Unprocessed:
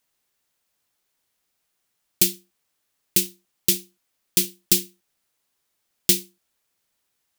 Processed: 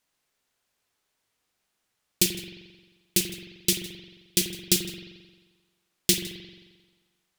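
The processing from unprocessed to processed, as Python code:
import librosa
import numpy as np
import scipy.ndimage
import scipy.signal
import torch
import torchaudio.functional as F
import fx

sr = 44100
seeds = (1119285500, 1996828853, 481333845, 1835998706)

p1 = fx.high_shelf(x, sr, hz=12000.0, db=-10.5)
p2 = p1 + fx.echo_single(p1, sr, ms=158, db=-20.5, dry=0)
y = fx.rev_spring(p2, sr, rt60_s=1.3, pass_ms=(44,), chirp_ms=45, drr_db=4.0)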